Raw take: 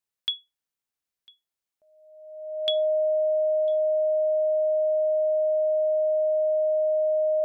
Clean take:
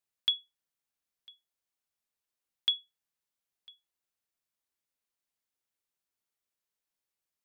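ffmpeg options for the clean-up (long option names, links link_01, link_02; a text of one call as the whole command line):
ffmpeg -i in.wav -af "bandreject=frequency=620:width=30" out.wav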